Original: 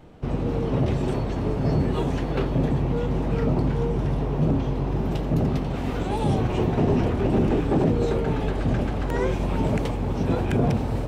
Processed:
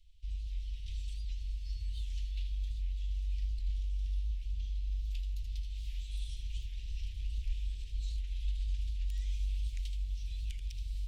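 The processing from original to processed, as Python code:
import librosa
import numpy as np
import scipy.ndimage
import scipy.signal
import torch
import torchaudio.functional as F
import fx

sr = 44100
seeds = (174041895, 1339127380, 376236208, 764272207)

y = scipy.signal.sosfilt(scipy.signal.cheby2(4, 50, [130.0, 1400.0], 'bandstop', fs=sr, output='sos'), x)
y = fx.high_shelf(y, sr, hz=4300.0, db=-9.5)
y = y + 10.0 ** (-8.5 / 20.0) * np.pad(y, (int(77 * sr / 1000.0), 0))[:len(y)]
y = fx.record_warp(y, sr, rpm=78.0, depth_cents=160.0)
y = F.gain(torch.from_numpy(y), -3.5).numpy()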